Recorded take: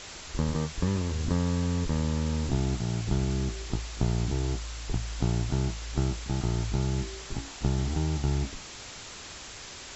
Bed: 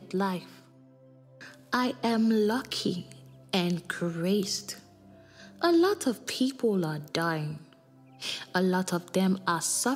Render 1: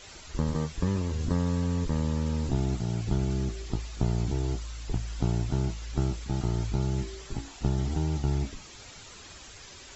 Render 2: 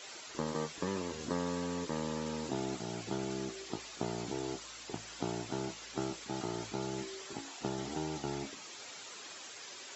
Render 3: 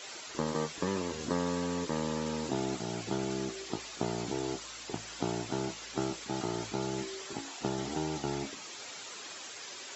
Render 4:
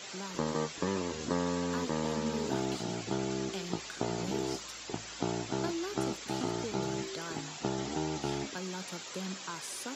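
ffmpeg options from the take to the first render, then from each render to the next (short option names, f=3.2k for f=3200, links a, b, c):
-af "afftdn=nr=9:nf=-44"
-af "highpass=330"
-af "volume=3.5dB"
-filter_complex "[1:a]volume=-14.5dB[a];[0:a][a]amix=inputs=2:normalize=0"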